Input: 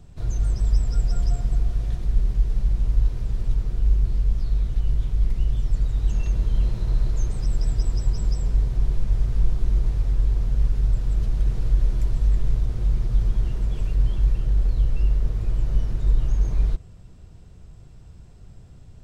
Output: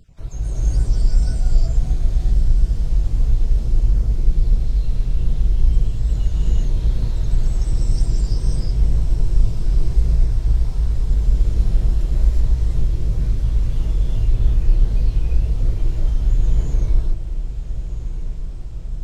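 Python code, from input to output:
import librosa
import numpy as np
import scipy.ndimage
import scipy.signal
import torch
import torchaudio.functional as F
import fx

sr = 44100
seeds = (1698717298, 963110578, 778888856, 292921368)

p1 = fx.spec_dropout(x, sr, seeds[0], share_pct=25)
p2 = fx.wow_flutter(p1, sr, seeds[1], rate_hz=2.1, depth_cents=130.0)
p3 = fx.rev_gated(p2, sr, seeds[2], gate_ms=400, shape='rising', drr_db=-7.0)
p4 = fx.dynamic_eq(p3, sr, hz=1300.0, q=0.83, threshold_db=-48.0, ratio=4.0, max_db=-5)
p5 = p4 + fx.echo_diffused(p4, sr, ms=1342, feedback_pct=61, wet_db=-10.5, dry=0)
y = p5 * librosa.db_to_amplitude(-1.5)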